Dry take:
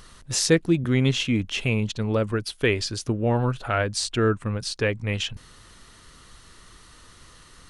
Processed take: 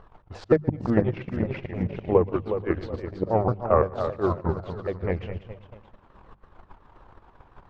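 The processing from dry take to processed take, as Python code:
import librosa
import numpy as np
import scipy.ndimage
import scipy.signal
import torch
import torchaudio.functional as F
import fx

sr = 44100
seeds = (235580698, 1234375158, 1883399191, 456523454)

p1 = fx.pitch_ramps(x, sr, semitones=-5.5, every_ms=174)
p2 = fx.auto_swell(p1, sr, attack_ms=158.0)
p3 = fx.peak_eq(p2, sr, hz=260.0, db=-4.5, octaves=0.25)
p4 = p3 + fx.echo_feedback(p3, sr, ms=120, feedback_pct=35, wet_db=-11.5, dry=0)
p5 = fx.echo_pitch(p4, sr, ms=485, semitones=1, count=3, db_per_echo=-6.0)
p6 = fx.transient(p5, sr, attack_db=10, sustain_db=-12)
p7 = scipy.signal.sosfilt(scipy.signal.butter(2, 1200.0, 'lowpass', fs=sr, output='sos'), p6)
p8 = fx.peak_eq(p7, sr, hz=660.0, db=8.0, octaves=1.3)
p9 = fx.hum_notches(p8, sr, base_hz=50, count=4)
y = p9 * librosa.db_to_amplitude(-2.5)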